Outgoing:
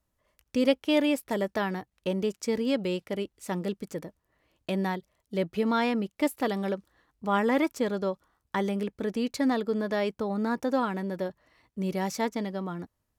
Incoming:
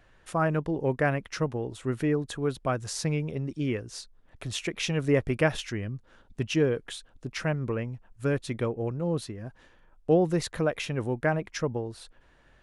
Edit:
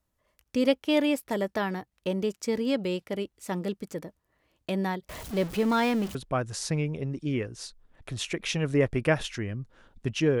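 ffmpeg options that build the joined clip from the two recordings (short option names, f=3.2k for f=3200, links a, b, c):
-filter_complex "[0:a]asettb=1/sr,asplit=3[a][b][c];[a]atrim=end=5.094[d];[b]atrim=start=5.09:end=6.15,asetpts=PTS-STARTPTS,afade=t=in:d=0.004:c=qsin,afade=t=out:st=1.056:d=0.004:c=qsin,aeval=exprs='val(0)+0.5*0.0211*sgn(val(0))':c=same[e];[c]atrim=start=6.146[f];[d][e]acrossfade=d=0.004:c1=hsin:c2=qsin[g];[g][f]acrossfade=d=0.004:c1=qsin:c2=hsin,apad=whole_dur=10.4,atrim=end=10.4,atrim=end=6.152[h];[1:a]atrim=start=2.488:end=6.74[i];[h][i]acrossfade=d=0.004:c1=hsin:c2=hsin"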